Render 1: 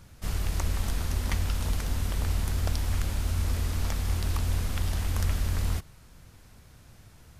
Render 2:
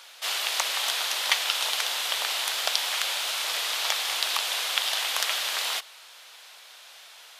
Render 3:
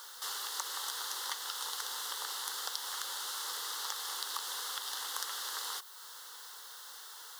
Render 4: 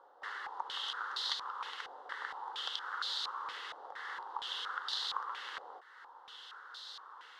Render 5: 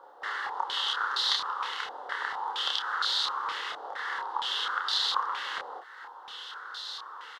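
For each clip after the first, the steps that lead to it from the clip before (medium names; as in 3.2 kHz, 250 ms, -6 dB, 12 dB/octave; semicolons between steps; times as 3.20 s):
high-pass 620 Hz 24 dB/octave; peaking EQ 3.4 kHz +11.5 dB 1.1 oct; trim +8 dB
compression 2:1, threshold -42 dBFS, peak gain reduction 13.5 dB; added noise blue -57 dBFS; static phaser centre 650 Hz, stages 6; trim +2.5 dB
step-sequenced low-pass 4.3 Hz 680–4000 Hz; trim -3.5 dB
doubling 29 ms -3 dB; trim +7.5 dB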